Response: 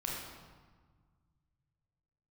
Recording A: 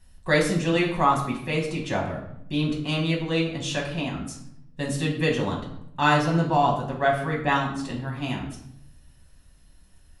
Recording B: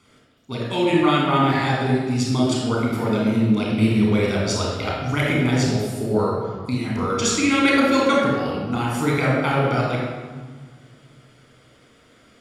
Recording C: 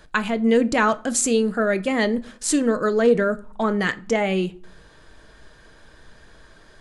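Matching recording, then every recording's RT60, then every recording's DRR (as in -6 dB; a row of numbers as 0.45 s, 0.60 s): B; 0.75 s, 1.5 s, 0.50 s; -2.5 dB, -4.0 dB, 12.0 dB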